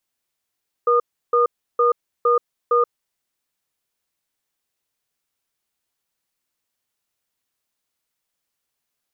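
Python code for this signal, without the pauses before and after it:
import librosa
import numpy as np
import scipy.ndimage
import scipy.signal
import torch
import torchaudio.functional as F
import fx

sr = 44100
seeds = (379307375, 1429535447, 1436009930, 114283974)

y = fx.cadence(sr, length_s=2.16, low_hz=478.0, high_hz=1220.0, on_s=0.13, off_s=0.33, level_db=-16.0)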